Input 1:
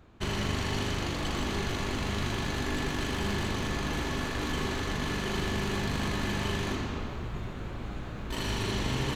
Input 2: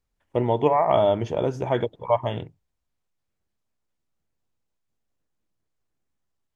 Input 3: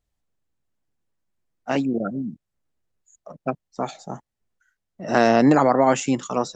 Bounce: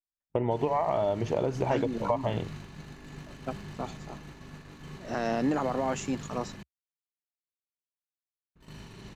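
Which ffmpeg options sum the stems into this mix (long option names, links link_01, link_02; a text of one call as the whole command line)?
ffmpeg -i stem1.wav -i stem2.wav -i stem3.wav -filter_complex "[0:a]aeval=exprs='val(0)+0.00891*(sin(2*PI*50*n/s)+sin(2*PI*2*50*n/s)/2+sin(2*PI*3*50*n/s)/3+sin(2*PI*4*50*n/s)/4+sin(2*PI*5*50*n/s)/5)':channel_layout=same,equalizer=frequency=160:width_type=o:width=0.47:gain=12,adelay=300,volume=-13.5dB,asplit=3[link_01][link_02][link_03];[link_01]atrim=end=6.63,asetpts=PTS-STARTPTS,afade=type=out:start_time=6.626:duration=0.004:curve=hsin[link_04];[link_02]atrim=start=6.63:end=8.55,asetpts=PTS-STARTPTS,volume=0[link_05];[link_03]atrim=start=8.55,asetpts=PTS-STARTPTS,afade=type=in:duration=0.004:curve=hsin[link_06];[link_04][link_05][link_06]concat=n=3:v=0:a=1[link_07];[1:a]alimiter=limit=-12.5dB:level=0:latency=1:release=244,volume=2dB[link_08];[2:a]alimiter=limit=-9dB:level=0:latency=1,volume=-10dB[link_09];[link_07][link_08]amix=inputs=2:normalize=0,bandreject=frequency=3300:width=12,acompressor=threshold=-23dB:ratio=10,volume=0dB[link_10];[link_09][link_10]amix=inputs=2:normalize=0,agate=range=-33dB:threshold=-37dB:ratio=3:detection=peak,equalizer=frequency=68:width_type=o:width=0.4:gain=-5" out.wav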